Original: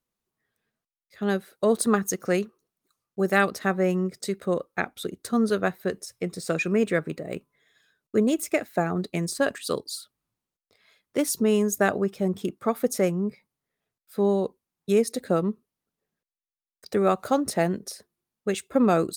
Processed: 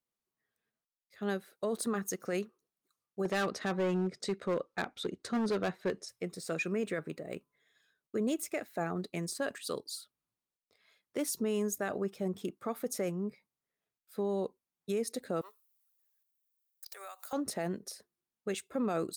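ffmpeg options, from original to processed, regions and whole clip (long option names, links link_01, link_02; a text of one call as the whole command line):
ffmpeg -i in.wav -filter_complex "[0:a]asettb=1/sr,asplit=3[link_01][link_02][link_03];[link_01]atrim=end=3.254[link_04];[link_02]atrim=start=3.25:end=6.09,asetpts=PTS-STARTPTS,afade=type=in:duration=0.004:curve=qsin,afade=type=out:start_time=2.836:duration=0.004:curve=qsin,lowpass=5800,acontrast=24,asoftclip=type=hard:threshold=-16.5dB[link_05];[link_03]atrim=start=6.086[link_06];[link_04][link_05]acrossfade=duration=0.004:curve1=hsin:curve2=qsin[link_07];[link_07][link_06]acrossfade=duration=0.004:curve1=qsin:curve2=hsin,asettb=1/sr,asplit=3[link_08][link_09][link_10];[link_08]atrim=end=15.414[link_11];[link_09]atrim=start=15.41:end=17.33,asetpts=PTS-STARTPTS,afade=type=in:duration=0.004:curve=qsin,afade=type=out:start_time=1.916:duration=0.004:curve=qsin,highpass=frequency=640:width=0.5412,highpass=frequency=640:width=1.3066,aemphasis=mode=production:type=riaa,acompressor=threshold=-36dB:ratio=8:attack=3.2:release=140:knee=1:detection=peak[link_12];[link_10]atrim=start=17.326[link_13];[link_11][link_12]acrossfade=duration=0.004:curve1=hsin:curve2=qsin[link_14];[link_14][link_13]acrossfade=duration=0.004:curve1=qsin:curve2=hsin,lowshelf=frequency=140:gain=-7,alimiter=limit=-17.5dB:level=0:latency=1:release=15,volume=-7dB" out.wav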